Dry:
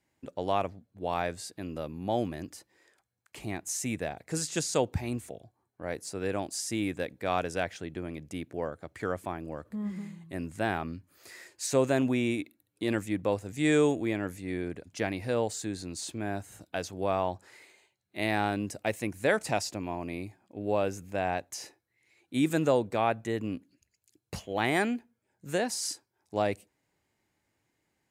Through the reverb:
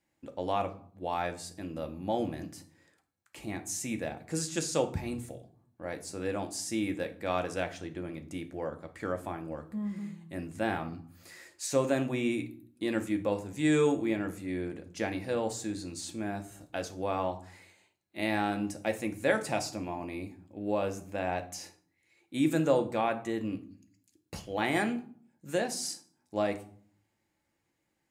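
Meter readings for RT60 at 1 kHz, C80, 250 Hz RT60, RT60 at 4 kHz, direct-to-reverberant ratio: 0.55 s, 18.5 dB, 0.80 s, 0.35 s, 5.0 dB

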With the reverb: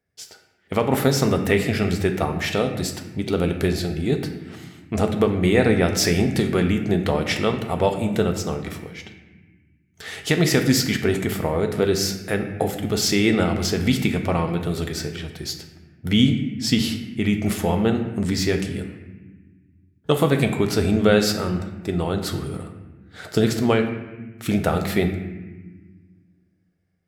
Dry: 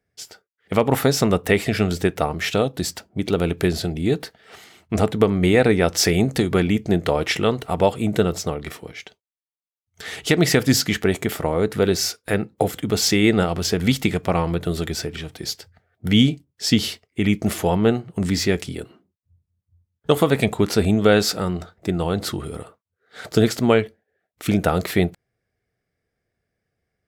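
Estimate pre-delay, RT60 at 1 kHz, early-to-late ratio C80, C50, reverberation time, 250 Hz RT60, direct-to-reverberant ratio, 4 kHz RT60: 8 ms, 1.1 s, 9.5 dB, 8.0 dB, 1.2 s, 2.2 s, 4.5 dB, 0.95 s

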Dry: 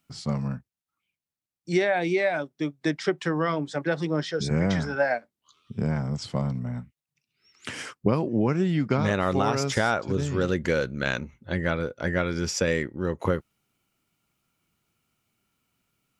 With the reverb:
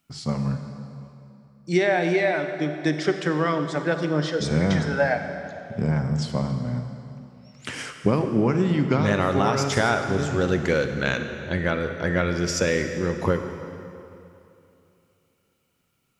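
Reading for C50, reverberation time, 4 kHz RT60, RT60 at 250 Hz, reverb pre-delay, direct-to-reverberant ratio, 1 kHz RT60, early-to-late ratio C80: 7.0 dB, 2.8 s, 2.2 s, 2.9 s, 34 ms, 6.5 dB, 2.8 s, 8.0 dB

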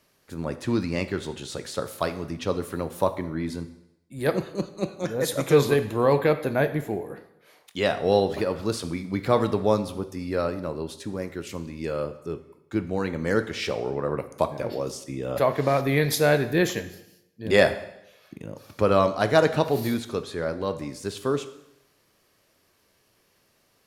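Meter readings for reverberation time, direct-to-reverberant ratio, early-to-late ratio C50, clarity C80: 0.85 s, 9.5 dB, 13.0 dB, 15.5 dB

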